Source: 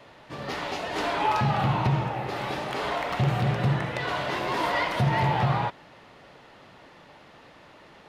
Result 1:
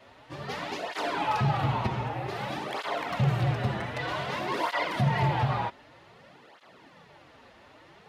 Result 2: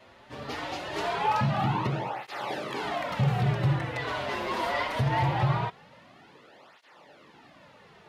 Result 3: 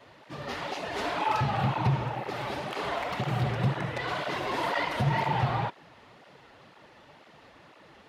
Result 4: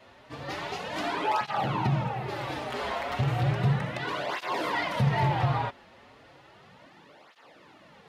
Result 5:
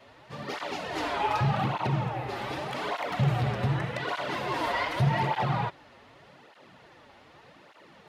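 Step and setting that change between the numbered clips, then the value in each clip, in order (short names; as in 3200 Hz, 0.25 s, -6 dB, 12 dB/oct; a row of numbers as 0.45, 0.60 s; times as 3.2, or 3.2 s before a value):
tape flanging out of phase, nulls at: 0.53, 0.22, 2, 0.34, 0.84 Hz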